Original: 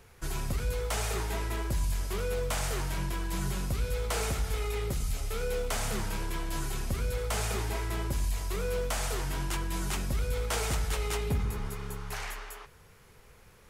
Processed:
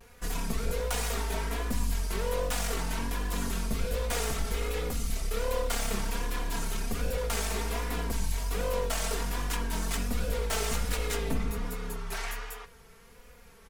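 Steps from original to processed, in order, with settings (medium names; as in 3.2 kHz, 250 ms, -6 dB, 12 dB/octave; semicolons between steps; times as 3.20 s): one-sided wavefolder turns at -31.5 dBFS; comb 4.3 ms, depth 84%; vibrato 1.3 Hz 73 cents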